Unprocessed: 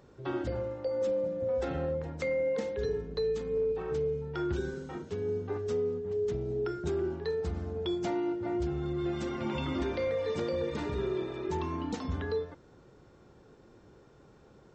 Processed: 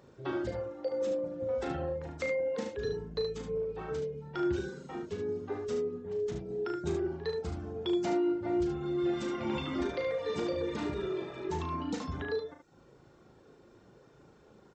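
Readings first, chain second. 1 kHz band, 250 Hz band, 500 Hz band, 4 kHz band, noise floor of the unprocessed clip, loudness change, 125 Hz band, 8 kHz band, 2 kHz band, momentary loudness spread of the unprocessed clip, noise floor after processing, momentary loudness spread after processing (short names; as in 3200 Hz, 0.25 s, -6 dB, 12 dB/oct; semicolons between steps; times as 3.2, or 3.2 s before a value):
+0.5 dB, +1.0 dB, -2.0 dB, +1.0 dB, -58 dBFS, -1.5 dB, -4.0 dB, n/a, +0.5 dB, 4 LU, -60 dBFS, 6 LU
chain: reverb removal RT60 0.7 s; low shelf 79 Hz -8.5 dB; early reflections 37 ms -6.5 dB, 74 ms -6 dB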